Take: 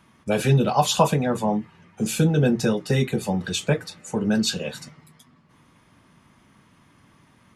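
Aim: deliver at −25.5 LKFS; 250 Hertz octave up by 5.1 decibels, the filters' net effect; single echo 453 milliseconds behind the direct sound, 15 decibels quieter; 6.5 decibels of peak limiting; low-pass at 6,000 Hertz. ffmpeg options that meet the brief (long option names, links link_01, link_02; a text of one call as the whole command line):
ffmpeg -i in.wav -af "lowpass=6000,equalizer=frequency=250:width_type=o:gain=6.5,alimiter=limit=-11dB:level=0:latency=1,aecho=1:1:453:0.178,volume=-3.5dB" out.wav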